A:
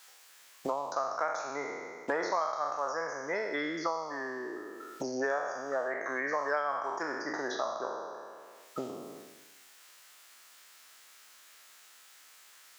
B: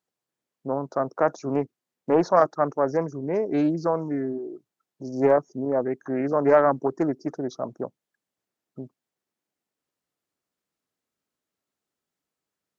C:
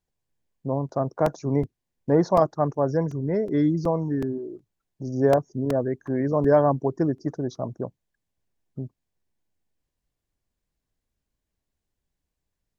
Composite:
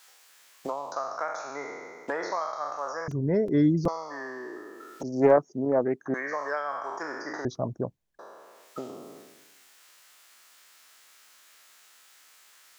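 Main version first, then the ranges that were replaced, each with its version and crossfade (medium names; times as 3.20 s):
A
3.08–3.88 s: from C
5.03–6.14 s: from B
7.45–8.19 s: from C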